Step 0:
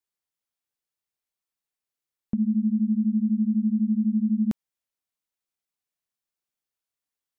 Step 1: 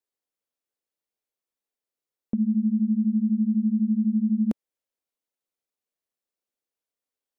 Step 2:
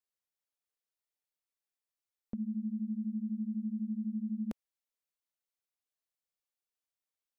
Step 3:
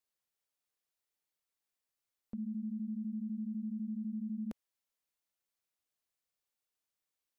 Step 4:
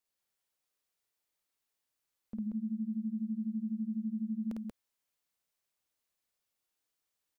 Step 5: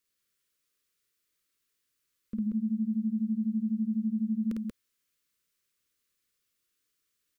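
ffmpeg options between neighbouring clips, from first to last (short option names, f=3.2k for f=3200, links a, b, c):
-af "equalizer=f=125:t=o:w=1:g=-6,equalizer=f=250:t=o:w=1:g=5,equalizer=f=500:t=o:w=1:g=9,volume=-3.5dB"
-af "equalizer=f=260:t=o:w=2.3:g=-9.5,volume=-4dB"
-af "alimiter=level_in=12.5dB:limit=-24dB:level=0:latency=1:release=50,volume=-12.5dB,volume=2.5dB"
-af "aecho=1:1:52.48|183.7:0.794|0.794"
-af "asuperstop=centerf=760:order=4:qfactor=1.2,volume=6dB"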